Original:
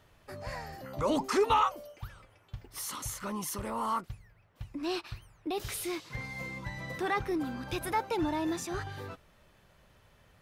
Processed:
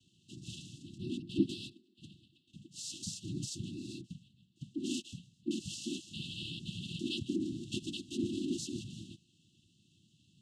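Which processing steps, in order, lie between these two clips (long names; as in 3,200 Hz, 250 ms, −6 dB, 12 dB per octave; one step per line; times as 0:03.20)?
0:00.97–0:02.55: linear-prediction vocoder at 8 kHz pitch kept
cochlear-implant simulation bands 6
linear-phase brick-wall band-stop 370–2,600 Hz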